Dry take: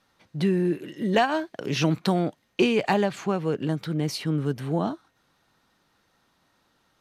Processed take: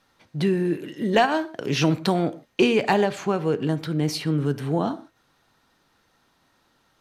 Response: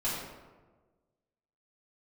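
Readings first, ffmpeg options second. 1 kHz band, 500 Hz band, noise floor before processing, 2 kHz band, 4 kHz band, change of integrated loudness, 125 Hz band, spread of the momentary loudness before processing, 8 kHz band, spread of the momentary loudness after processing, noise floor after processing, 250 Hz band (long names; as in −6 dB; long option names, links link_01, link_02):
+2.5 dB, +2.5 dB, −69 dBFS, +2.5 dB, +2.5 dB, +2.0 dB, +1.5 dB, 7 LU, +2.5 dB, 7 LU, −66 dBFS, +1.5 dB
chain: -filter_complex "[0:a]asplit=2[link_01][link_02];[1:a]atrim=start_sample=2205,afade=type=out:start_time=0.35:duration=0.01,atrim=end_sample=15876,asetrate=83790,aresample=44100[link_03];[link_02][link_03]afir=irnorm=-1:irlink=0,volume=-14.5dB[link_04];[link_01][link_04]amix=inputs=2:normalize=0,volume=2dB"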